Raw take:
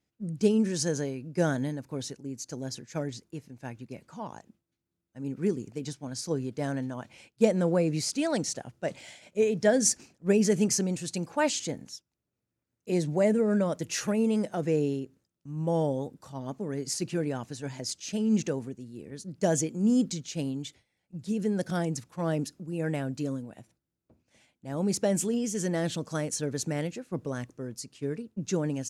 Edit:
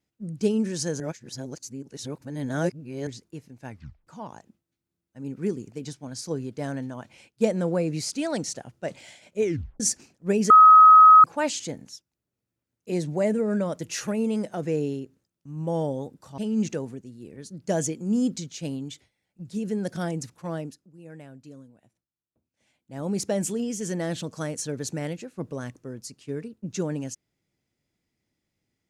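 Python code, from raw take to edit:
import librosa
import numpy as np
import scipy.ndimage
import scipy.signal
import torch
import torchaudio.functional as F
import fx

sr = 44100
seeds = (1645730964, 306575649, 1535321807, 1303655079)

y = fx.edit(x, sr, fx.reverse_span(start_s=1.0, length_s=2.07),
    fx.tape_stop(start_s=3.7, length_s=0.37),
    fx.tape_stop(start_s=9.43, length_s=0.37),
    fx.bleep(start_s=10.5, length_s=0.74, hz=1270.0, db=-8.0),
    fx.cut(start_s=16.38, length_s=1.74),
    fx.fade_down_up(start_s=22.14, length_s=2.54, db=-13.5, fade_s=0.4), tone=tone)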